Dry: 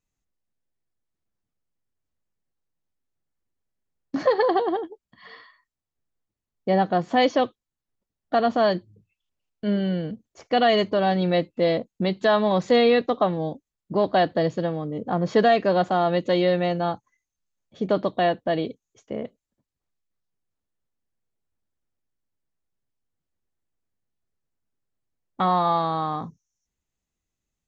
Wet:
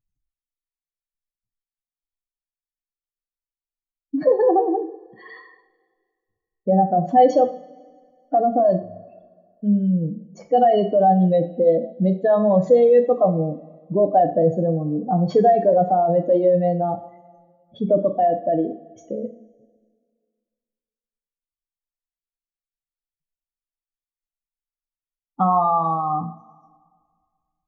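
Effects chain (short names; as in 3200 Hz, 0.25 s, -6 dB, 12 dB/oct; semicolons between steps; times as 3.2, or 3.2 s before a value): spectral contrast raised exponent 2.4; two-slope reverb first 0.42 s, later 1.9 s, from -19 dB, DRR 5.5 dB; gain +3.5 dB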